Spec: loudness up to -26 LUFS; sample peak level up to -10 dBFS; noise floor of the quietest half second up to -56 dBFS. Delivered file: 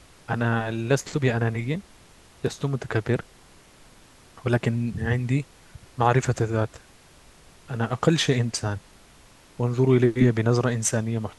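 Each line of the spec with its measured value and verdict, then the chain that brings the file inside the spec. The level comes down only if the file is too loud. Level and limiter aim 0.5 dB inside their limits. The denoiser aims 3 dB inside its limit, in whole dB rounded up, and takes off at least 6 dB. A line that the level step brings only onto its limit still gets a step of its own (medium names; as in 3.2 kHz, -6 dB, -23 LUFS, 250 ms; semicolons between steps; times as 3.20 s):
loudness -24.5 LUFS: fail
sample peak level -4.5 dBFS: fail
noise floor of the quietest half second -52 dBFS: fail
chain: noise reduction 6 dB, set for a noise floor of -52 dBFS; trim -2 dB; peak limiter -10.5 dBFS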